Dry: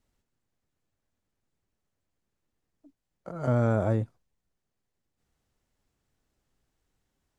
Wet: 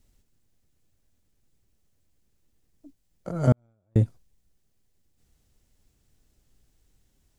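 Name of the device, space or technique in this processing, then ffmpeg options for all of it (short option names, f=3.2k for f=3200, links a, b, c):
smiley-face EQ: -filter_complex "[0:a]lowshelf=f=81:g=8,equalizer=f=1.1k:t=o:w=1.9:g=-6.5,highshelf=f=5.4k:g=5,asettb=1/sr,asplit=3[a][b][c];[a]atrim=end=3.524[d];[b]atrim=start=3.52:end=3.96,asetpts=PTS-STARTPTS,afade=t=in:d=0.004:c=qsin,afade=t=out:st=0.436:d=0.004:c=qsin,agate=range=-52dB:threshold=-16dB:ratio=16:detection=peak[e];[c]atrim=start=3.956[f];[d][e]acrossfade=d=0.004:c1=hsin:c2=qsin[g];[g][f]acrossfade=d=0.004:c1=qsin:c2=hsin,volume=7.5dB"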